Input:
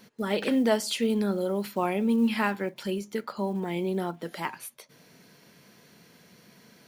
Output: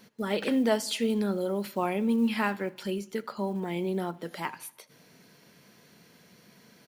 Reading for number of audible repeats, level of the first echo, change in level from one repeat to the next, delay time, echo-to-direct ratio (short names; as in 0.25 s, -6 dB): 3, -24.0 dB, -5.0 dB, 80 ms, -22.5 dB